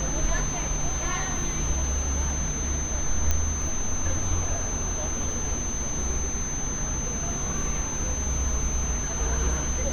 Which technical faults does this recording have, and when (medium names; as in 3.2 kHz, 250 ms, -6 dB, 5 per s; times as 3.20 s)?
whine 6.2 kHz -30 dBFS
3.31 s: pop -10 dBFS